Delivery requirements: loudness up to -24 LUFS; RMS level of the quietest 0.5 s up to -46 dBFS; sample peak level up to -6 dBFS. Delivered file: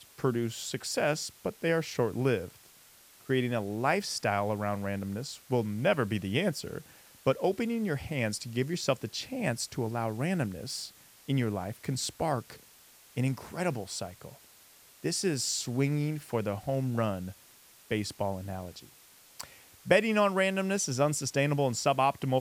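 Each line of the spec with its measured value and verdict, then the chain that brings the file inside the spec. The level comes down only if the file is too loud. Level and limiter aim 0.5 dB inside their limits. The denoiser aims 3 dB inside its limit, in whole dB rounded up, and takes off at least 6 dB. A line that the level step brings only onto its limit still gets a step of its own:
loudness -31.0 LUFS: pass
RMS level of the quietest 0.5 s -57 dBFS: pass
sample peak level -9.5 dBFS: pass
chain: none needed

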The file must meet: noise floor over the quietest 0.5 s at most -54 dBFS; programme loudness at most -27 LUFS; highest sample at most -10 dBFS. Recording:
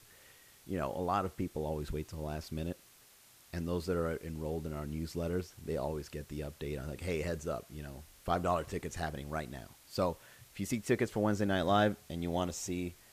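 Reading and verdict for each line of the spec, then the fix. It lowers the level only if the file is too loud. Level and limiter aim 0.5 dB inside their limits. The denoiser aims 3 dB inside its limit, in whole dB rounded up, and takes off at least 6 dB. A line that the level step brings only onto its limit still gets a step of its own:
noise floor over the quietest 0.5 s -61 dBFS: pass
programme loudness -36.5 LUFS: pass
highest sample -16.0 dBFS: pass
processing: none needed

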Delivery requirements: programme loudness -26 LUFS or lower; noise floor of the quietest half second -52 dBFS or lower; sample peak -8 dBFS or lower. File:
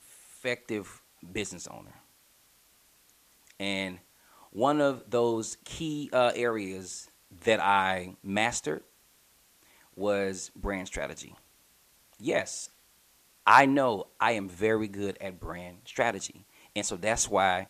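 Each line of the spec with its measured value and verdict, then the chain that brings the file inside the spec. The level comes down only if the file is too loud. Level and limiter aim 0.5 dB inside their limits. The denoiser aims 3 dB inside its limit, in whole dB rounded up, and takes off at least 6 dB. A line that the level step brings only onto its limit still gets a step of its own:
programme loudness -29.0 LUFS: pass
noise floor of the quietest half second -63 dBFS: pass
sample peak -5.5 dBFS: fail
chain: peak limiter -8.5 dBFS

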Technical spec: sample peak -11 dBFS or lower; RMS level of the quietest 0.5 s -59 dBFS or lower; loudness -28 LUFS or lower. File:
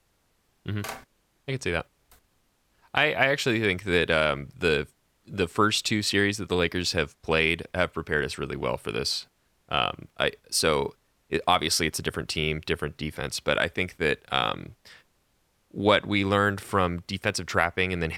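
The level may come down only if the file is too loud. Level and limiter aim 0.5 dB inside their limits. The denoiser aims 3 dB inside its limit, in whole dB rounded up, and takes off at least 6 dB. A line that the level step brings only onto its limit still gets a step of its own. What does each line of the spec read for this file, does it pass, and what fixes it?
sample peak -4.5 dBFS: fail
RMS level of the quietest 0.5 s -69 dBFS: pass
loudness -26.0 LUFS: fail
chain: trim -2.5 dB; peak limiter -11.5 dBFS

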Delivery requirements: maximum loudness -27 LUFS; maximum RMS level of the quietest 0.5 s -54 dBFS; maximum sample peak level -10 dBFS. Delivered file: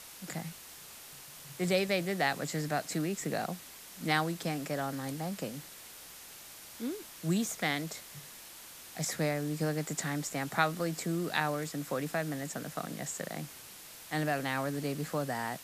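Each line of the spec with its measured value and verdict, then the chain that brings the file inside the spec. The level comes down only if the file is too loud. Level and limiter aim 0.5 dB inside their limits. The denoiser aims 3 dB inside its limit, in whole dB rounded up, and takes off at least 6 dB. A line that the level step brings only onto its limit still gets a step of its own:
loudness -34.0 LUFS: pass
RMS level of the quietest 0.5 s -50 dBFS: fail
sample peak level -12.0 dBFS: pass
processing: noise reduction 7 dB, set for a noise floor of -50 dBFS

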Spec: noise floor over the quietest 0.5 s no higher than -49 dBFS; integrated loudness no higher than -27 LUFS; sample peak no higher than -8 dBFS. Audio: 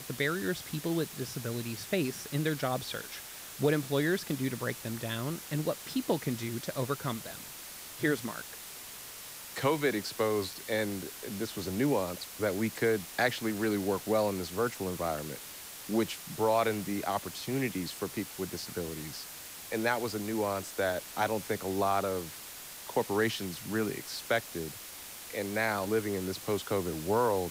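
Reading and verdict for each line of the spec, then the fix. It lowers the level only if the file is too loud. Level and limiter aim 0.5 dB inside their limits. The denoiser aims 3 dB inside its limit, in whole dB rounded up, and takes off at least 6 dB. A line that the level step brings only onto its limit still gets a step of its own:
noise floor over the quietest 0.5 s -46 dBFS: fail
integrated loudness -33.0 LUFS: pass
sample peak -15.0 dBFS: pass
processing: noise reduction 6 dB, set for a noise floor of -46 dBFS

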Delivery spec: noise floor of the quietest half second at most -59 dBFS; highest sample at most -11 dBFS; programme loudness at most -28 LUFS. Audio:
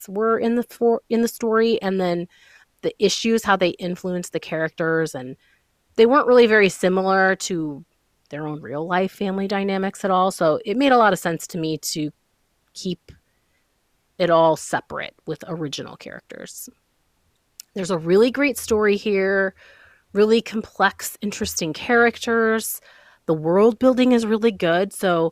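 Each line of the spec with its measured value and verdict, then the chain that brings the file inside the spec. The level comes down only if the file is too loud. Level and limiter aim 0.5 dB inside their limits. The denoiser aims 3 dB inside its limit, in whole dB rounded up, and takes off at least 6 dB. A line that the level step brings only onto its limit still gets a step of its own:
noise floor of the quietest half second -67 dBFS: pass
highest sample -4.0 dBFS: fail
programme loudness -20.0 LUFS: fail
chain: trim -8.5 dB

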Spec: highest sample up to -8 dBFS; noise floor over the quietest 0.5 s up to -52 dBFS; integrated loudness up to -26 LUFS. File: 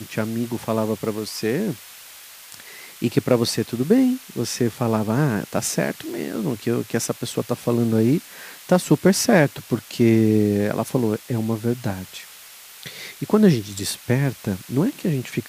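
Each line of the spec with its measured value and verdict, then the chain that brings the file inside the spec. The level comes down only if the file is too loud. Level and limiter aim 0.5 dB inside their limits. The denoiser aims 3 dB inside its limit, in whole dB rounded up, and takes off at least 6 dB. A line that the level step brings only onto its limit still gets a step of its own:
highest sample -3.0 dBFS: fail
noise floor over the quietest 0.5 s -43 dBFS: fail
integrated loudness -21.5 LUFS: fail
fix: noise reduction 7 dB, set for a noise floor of -43 dBFS; trim -5 dB; peak limiter -8.5 dBFS

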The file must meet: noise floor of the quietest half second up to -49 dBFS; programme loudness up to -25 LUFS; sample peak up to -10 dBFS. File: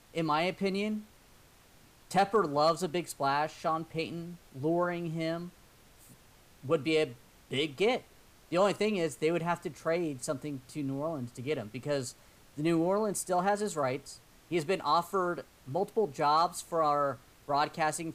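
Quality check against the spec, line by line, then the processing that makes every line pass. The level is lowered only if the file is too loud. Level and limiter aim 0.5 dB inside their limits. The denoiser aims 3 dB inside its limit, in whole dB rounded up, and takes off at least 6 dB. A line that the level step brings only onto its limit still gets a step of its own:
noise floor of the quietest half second -59 dBFS: pass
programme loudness -31.5 LUFS: pass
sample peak -14.5 dBFS: pass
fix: none needed

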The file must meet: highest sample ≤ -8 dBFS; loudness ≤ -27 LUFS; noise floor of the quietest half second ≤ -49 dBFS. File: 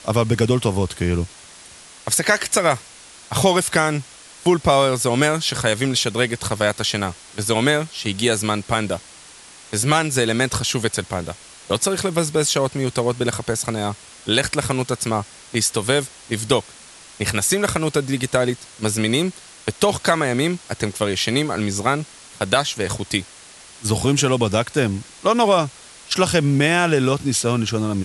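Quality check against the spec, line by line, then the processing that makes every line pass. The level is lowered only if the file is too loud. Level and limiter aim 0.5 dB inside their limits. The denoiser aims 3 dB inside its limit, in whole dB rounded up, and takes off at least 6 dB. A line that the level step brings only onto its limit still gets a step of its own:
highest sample -3.0 dBFS: fail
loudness -20.5 LUFS: fail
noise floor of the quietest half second -43 dBFS: fail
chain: trim -7 dB

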